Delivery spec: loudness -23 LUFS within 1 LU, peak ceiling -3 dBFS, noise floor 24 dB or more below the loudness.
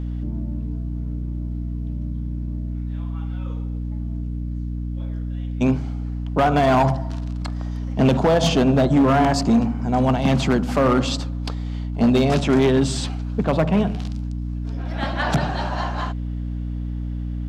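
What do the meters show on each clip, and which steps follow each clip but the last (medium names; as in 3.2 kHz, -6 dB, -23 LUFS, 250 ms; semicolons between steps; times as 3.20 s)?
clipped samples 1.6%; clipping level -11.5 dBFS; hum 60 Hz; highest harmonic 300 Hz; hum level -25 dBFS; loudness -22.0 LUFS; peak level -11.5 dBFS; loudness target -23.0 LUFS
-> clip repair -11.5 dBFS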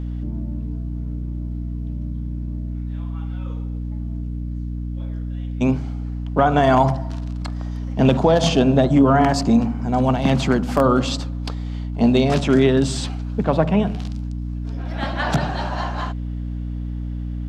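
clipped samples 0.0%; hum 60 Hz; highest harmonic 300 Hz; hum level -24 dBFS
-> de-hum 60 Hz, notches 5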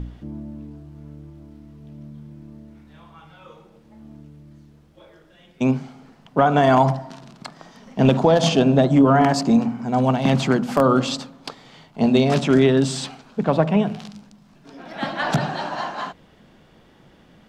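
hum not found; loudness -19.0 LUFS; peak level -2.5 dBFS; loudness target -23.0 LUFS
-> trim -4 dB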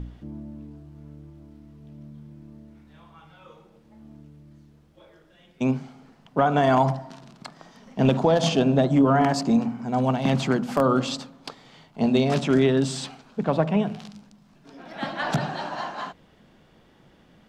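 loudness -23.0 LUFS; peak level -6.5 dBFS; noise floor -57 dBFS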